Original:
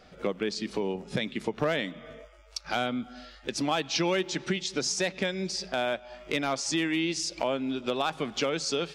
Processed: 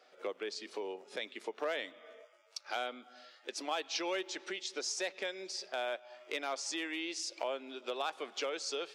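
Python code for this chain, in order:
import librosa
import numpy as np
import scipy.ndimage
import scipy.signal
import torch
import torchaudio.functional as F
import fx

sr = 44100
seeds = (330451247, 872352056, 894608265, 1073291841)

y = scipy.signal.sosfilt(scipy.signal.butter(4, 370.0, 'highpass', fs=sr, output='sos'), x)
y = y * librosa.db_to_amplitude(-7.5)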